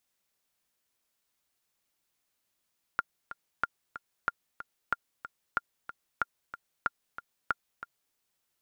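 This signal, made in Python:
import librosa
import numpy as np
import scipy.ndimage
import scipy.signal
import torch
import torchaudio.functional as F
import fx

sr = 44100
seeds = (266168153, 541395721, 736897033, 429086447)

y = fx.click_track(sr, bpm=186, beats=2, bars=8, hz=1400.0, accent_db=13.0, level_db=-13.5)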